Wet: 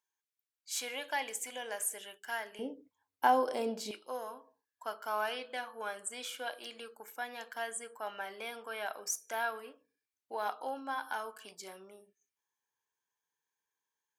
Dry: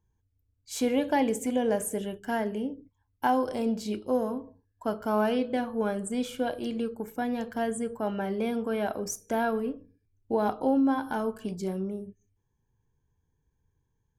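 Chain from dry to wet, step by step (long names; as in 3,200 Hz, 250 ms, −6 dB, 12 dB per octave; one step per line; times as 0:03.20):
high-pass filter 1,300 Hz 12 dB per octave, from 0:02.59 440 Hz, from 0:03.91 1,100 Hz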